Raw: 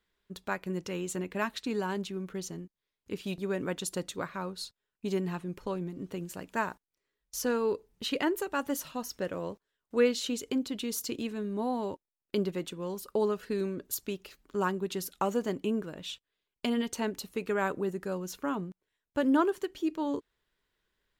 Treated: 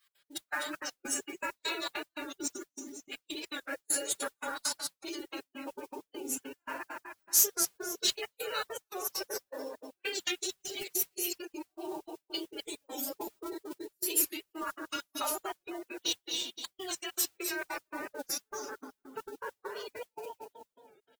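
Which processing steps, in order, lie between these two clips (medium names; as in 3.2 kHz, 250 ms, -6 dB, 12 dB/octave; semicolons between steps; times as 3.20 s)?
random holes in the spectrogram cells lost 23%; high-pass 58 Hz 12 dB/octave; simulated room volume 150 m³, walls mixed, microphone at 2.2 m; compression 6:1, threshold -32 dBFS, peak gain reduction 20.5 dB; on a send: feedback delay 250 ms, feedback 36%, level -4 dB; on the sum: spectral gate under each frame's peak -30 dB strong; tilt EQ +4.5 dB/octave; trance gate "x.x.x..xxx.x..x" 200 bpm -60 dB; modulation noise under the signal 18 dB; formant-preserving pitch shift +7.5 st; warped record 45 rpm, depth 100 cents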